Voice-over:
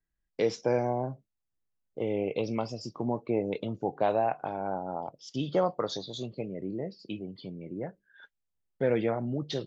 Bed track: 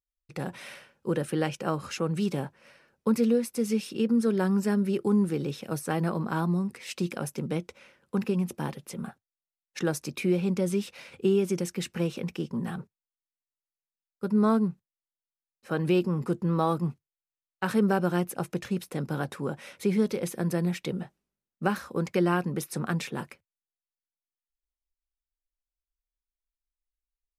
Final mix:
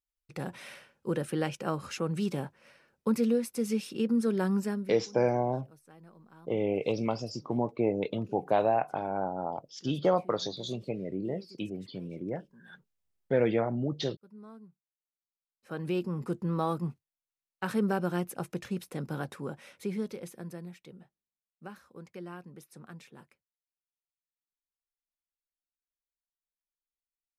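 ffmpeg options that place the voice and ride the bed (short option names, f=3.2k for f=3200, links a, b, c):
-filter_complex "[0:a]adelay=4500,volume=1dB[a];[1:a]volume=19dB,afade=t=out:st=4.56:d=0.42:silence=0.0668344,afade=t=in:st=14.91:d=1.45:silence=0.0794328,afade=t=out:st=19.18:d=1.59:silence=0.199526[b];[a][b]amix=inputs=2:normalize=0"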